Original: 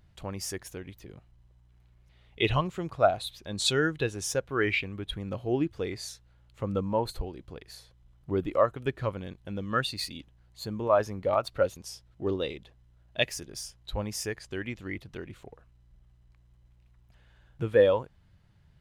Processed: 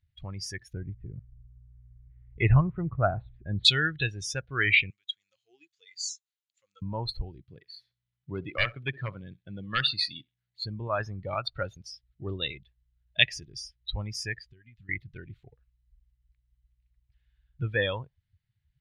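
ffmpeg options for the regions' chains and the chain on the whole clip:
ffmpeg -i in.wav -filter_complex "[0:a]asettb=1/sr,asplit=3[link_01][link_02][link_03];[link_01]atrim=end=0.734[link_04];[link_02]atrim=start=0.73:end=3.65,asetpts=PTS-STARTPTS,afade=type=in:duration=0.004:curve=qsin,afade=type=out:start_time=2.916:duration=0.004:curve=qsin,lowpass=frequency=1900:width=0.5412,lowpass=frequency=1900:width=1.3066,lowshelf=frequency=490:gain=8[link_05];[link_03]atrim=start=3.646[link_06];[link_04][link_05]acrossfade=duration=0.004:curve1=hsin:curve2=qsin[link_07];[link_07][link_06]acrossfade=duration=0.004:curve1=qsin:curve2=hsin,asettb=1/sr,asplit=3[link_08][link_09][link_10];[link_08]atrim=end=4.904[link_11];[link_09]atrim=start=4.9:end=6.82,asetpts=PTS-STARTPTS,afade=type=in:duration=0.004:curve=qsin,afade=type=out:start_time=1.916:duration=0.004:curve=qsin,lowpass=frequency=7000:width_type=q:width=6.6,aderivative[link_12];[link_10]atrim=start=6.816[link_13];[link_11][link_12]acrossfade=duration=0.004:curve1=hsin:curve2=qsin[link_14];[link_14][link_13]acrossfade=duration=0.004:curve1=qsin:curve2=hsin,asettb=1/sr,asplit=3[link_15][link_16][link_17];[link_15]atrim=end=7.444[link_18];[link_16]atrim=start=7.44:end=10.66,asetpts=PTS-STARTPTS,afade=type=in:duration=0.004:curve=qsin,afade=type=out:start_time=3.216:duration=0.004:curve=qsin,highpass=120,aeval=exprs='0.119*(abs(mod(val(0)/0.119+3,4)-2)-1)':channel_layout=same,aecho=1:1:66|132:0.119|0.0333,atrim=end_sample=142002[link_19];[link_17]atrim=start=10.656[link_20];[link_18][link_19]acrossfade=duration=0.004:curve1=hsin:curve2=qsin[link_21];[link_21][link_20]acrossfade=duration=0.004:curve1=qsin:curve2=hsin,asettb=1/sr,asplit=3[link_22][link_23][link_24];[link_22]atrim=end=14.444[link_25];[link_23]atrim=start=14.44:end=14.89,asetpts=PTS-STARTPTS,afade=type=in:duration=0.004:curve=qsin,afade=type=out:start_time=0.446:duration=0.004:curve=qsin,equalizer=frequency=330:width=5.9:gain=-8,acompressor=threshold=-46dB:ratio=10:attack=3.2:release=140:knee=1:detection=peak[link_26];[link_24]atrim=start=14.886[link_27];[link_25][link_26]acrossfade=duration=0.004:curve1=hsin:curve2=qsin[link_28];[link_28][link_27]acrossfade=duration=0.004:curve1=qsin:curve2=hsin,afftdn=noise_reduction=22:noise_floor=-40,equalizer=frequency=125:width_type=o:width=1:gain=5,equalizer=frequency=250:width_type=o:width=1:gain=-7,equalizer=frequency=500:width_type=o:width=1:gain=-9,equalizer=frequency=1000:width_type=o:width=1:gain=-6,equalizer=frequency=2000:width_type=o:width=1:gain=8,equalizer=frequency=4000:width_type=o:width=1:gain=9,equalizer=frequency=8000:width_type=o:width=1:gain=-8" out.wav

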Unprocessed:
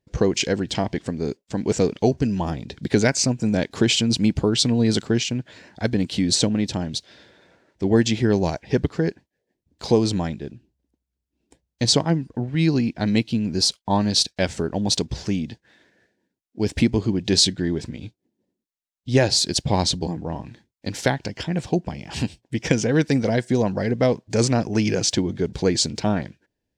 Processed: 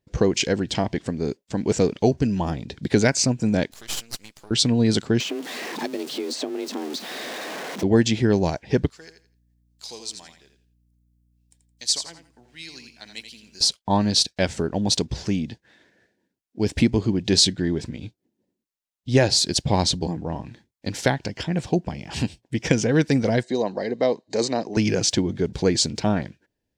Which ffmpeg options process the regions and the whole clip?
ffmpeg -i in.wav -filter_complex "[0:a]asettb=1/sr,asplit=3[link_01][link_02][link_03];[link_01]atrim=end=3.724[link_04];[link_02]atrim=start=3.72:end=4.51,asetpts=PTS-STARTPTS,afade=type=in:duration=0.004:curve=qsin,afade=type=out:start_time=0.786:duration=0.004:curve=qsin,aderivative,acompressor=mode=upward:threshold=-38dB:ratio=2.5:attack=3.2:release=140:knee=2.83:detection=peak,aeval=exprs='max(val(0),0)':channel_layout=same[link_05];[link_03]atrim=start=4.506[link_06];[link_04][link_05]acrossfade=duration=0.004:curve1=hsin:curve2=qsin[link_07];[link_07][link_06]acrossfade=duration=0.004:curve1=qsin:curve2=hsin,asettb=1/sr,asplit=3[link_08][link_09][link_10];[link_08]atrim=end=5.204[link_11];[link_09]atrim=start=5.2:end=7.83,asetpts=PTS-STARTPTS,afade=type=in:duration=0.004:curve=qsin,afade=type=out:start_time=2.626:duration=0.004:curve=qsin,aeval=exprs='val(0)+0.5*0.0447*sgn(val(0))':channel_layout=same,acrossover=split=3000|7200[link_12][link_13][link_14];[link_12]acompressor=threshold=-28dB:ratio=4[link_15];[link_13]acompressor=threshold=-37dB:ratio=4[link_16];[link_14]acompressor=threshold=-47dB:ratio=4[link_17];[link_15][link_16][link_17]amix=inputs=3:normalize=0,afreqshift=140[link_18];[link_10]atrim=start=7.826[link_19];[link_11][link_18]acrossfade=duration=0.004:curve1=hsin:curve2=qsin[link_20];[link_20][link_19]acrossfade=duration=0.004:curve1=qsin:curve2=hsin,asettb=1/sr,asplit=3[link_21][link_22][link_23];[link_21]atrim=end=8.904[link_24];[link_22]atrim=start=8.9:end=13.61,asetpts=PTS-STARTPTS,afade=type=in:duration=0.004:curve=qsin,afade=type=out:start_time=4.706:duration=0.004:curve=qsin,aderivative,aeval=exprs='val(0)+0.000501*(sin(2*PI*60*n/s)+sin(2*PI*2*60*n/s)/2+sin(2*PI*3*60*n/s)/3+sin(2*PI*4*60*n/s)/4+sin(2*PI*5*60*n/s)/5)':channel_layout=same,aecho=1:1:84|168|252:0.376|0.0902|0.0216,atrim=end_sample=207711[link_25];[link_23]atrim=start=13.606[link_26];[link_24][link_25]acrossfade=duration=0.004:curve1=hsin:curve2=qsin[link_27];[link_27][link_26]acrossfade=duration=0.004:curve1=qsin:curve2=hsin,asettb=1/sr,asplit=3[link_28][link_29][link_30];[link_28]atrim=end=23.434[link_31];[link_29]atrim=start=23.43:end=24.77,asetpts=PTS-STARTPTS,afade=type=in:duration=0.004:curve=qsin,afade=type=out:start_time=1.336:duration=0.004:curve=qsin,asuperstop=centerf=3400:order=4:qfactor=7.9,highpass=320,equalizer=frequency=1400:width_type=q:width=4:gain=-10,equalizer=frequency=2600:width_type=q:width=4:gain=-9,equalizer=frequency=3800:width_type=q:width=4:gain=9,equalizer=frequency=5500:width_type=q:width=4:gain=-7,lowpass=frequency=7100:width=0.5412,lowpass=frequency=7100:width=1.3066[link_32];[link_30]atrim=start=24.766[link_33];[link_31][link_32]acrossfade=duration=0.004:curve1=hsin:curve2=qsin[link_34];[link_34][link_33]acrossfade=duration=0.004:curve1=qsin:curve2=hsin" out.wav

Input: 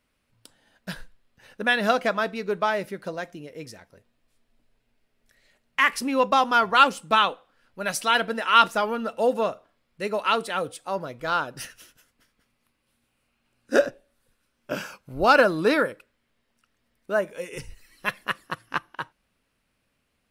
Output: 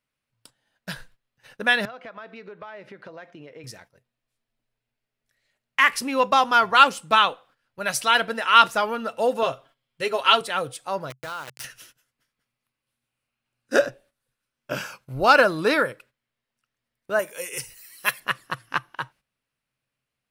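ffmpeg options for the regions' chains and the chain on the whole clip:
ffmpeg -i in.wav -filter_complex "[0:a]asettb=1/sr,asplit=3[link_01][link_02][link_03];[link_01]atrim=end=1.854[link_04];[link_02]atrim=start=1.85:end=3.64,asetpts=PTS-STARTPTS,afade=type=in:duration=0.004:curve=qsin,afade=type=out:start_time=1.786:duration=0.004:curve=qsin,highpass=190,lowpass=2900,acompressor=threshold=-37dB:ratio=8:attack=3.2:release=140:knee=1:detection=peak[link_05];[link_03]atrim=start=3.636[link_06];[link_04][link_05]acrossfade=duration=0.004:curve1=hsin:curve2=qsin[link_07];[link_07][link_06]acrossfade=duration=0.004:curve1=qsin:curve2=hsin,asettb=1/sr,asplit=3[link_08][link_09][link_10];[link_08]atrim=end=9.424[link_11];[link_09]atrim=start=9.42:end=10.41,asetpts=PTS-STARTPTS,afade=type=in:duration=0.004:curve=qsin,afade=type=out:start_time=0.986:duration=0.004:curve=qsin,equalizer=frequency=3200:width_type=o:width=0.23:gain=11,aecho=1:1:7.4:0.71,atrim=end_sample=43659[link_12];[link_10]atrim=start=10.406[link_13];[link_11][link_12]acrossfade=duration=0.004:curve1=hsin:curve2=qsin[link_14];[link_14][link_13]acrossfade=duration=0.004:curve1=qsin:curve2=hsin,asettb=1/sr,asplit=3[link_15][link_16][link_17];[link_15]atrim=end=11.104[link_18];[link_16]atrim=start=11.1:end=11.64,asetpts=PTS-STARTPTS,afade=type=in:duration=0.004:curve=qsin,afade=type=out:start_time=0.536:duration=0.004:curve=qsin,aeval=exprs='val(0)*gte(abs(val(0)),0.0251)':channel_layout=same,acompressor=threshold=-32dB:ratio=5:attack=3.2:release=140:knee=1:detection=peak[link_19];[link_17]atrim=start=11.636[link_20];[link_18][link_19]acrossfade=duration=0.004:curve1=hsin:curve2=qsin[link_21];[link_21][link_20]acrossfade=duration=0.004:curve1=qsin:curve2=hsin,asettb=1/sr,asplit=3[link_22][link_23][link_24];[link_22]atrim=end=17.194[link_25];[link_23]atrim=start=17.19:end=18.2,asetpts=PTS-STARTPTS,afade=type=in:duration=0.004:curve=qsin,afade=type=out:start_time=1.006:duration=0.004:curve=qsin,aemphasis=mode=production:type=bsi,bandreject=frequency=3600:width=21,asoftclip=type=hard:threshold=-7.5dB[link_26];[link_24]atrim=start=18.196[link_27];[link_25][link_26]acrossfade=duration=0.004:curve1=hsin:curve2=qsin[link_28];[link_28][link_27]acrossfade=duration=0.004:curve1=qsin:curve2=hsin,lowshelf=frequency=430:gain=-8,agate=range=-12dB:threshold=-54dB:ratio=16:detection=peak,equalizer=frequency=130:width_type=o:width=0.38:gain=13,volume=3dB" out.wav

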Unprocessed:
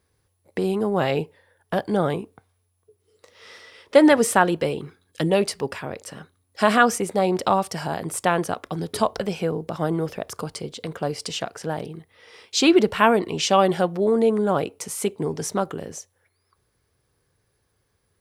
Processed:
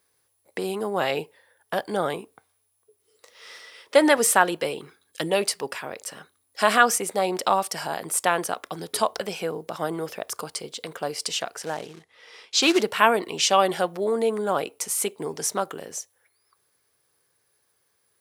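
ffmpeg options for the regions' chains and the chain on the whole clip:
ffmpeg -i in.wav -filter_complex "[0:a]asettb=1/sr,asplit=3[link_01][link_02][link_03];[link_01]atrim=end=11.664[link_04];[link_02]atrim=start=11.66:end=12.81,asetpts=PTS-STARTPTS,afade=type=in:duration=0.004:curve=qsin,afade=type=out:start_time=1.146:duration=0.004:curve=qsin,acrusher=bits=4:mode=log:mix=0:aa=0.000001,lowpass=6700[link_05];[link_03]atrim=start=12.806[link_06];[link_04][link_05]acrossfade=duration=0.004:curve1=hsin:curve2=qsin[link_07];[link_07][link_06]acrossfade=duration=0.004:curve1=qsin:curve2=hsin,highpass=frequency=640:poles=1,highshelf=frequency=8500:gain=8,volume=1dB" out.wav

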